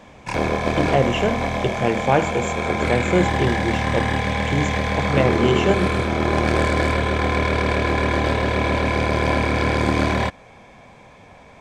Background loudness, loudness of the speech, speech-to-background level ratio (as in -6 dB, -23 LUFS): -21.0 LUFS, -23.0 LUFS, -2.0 dB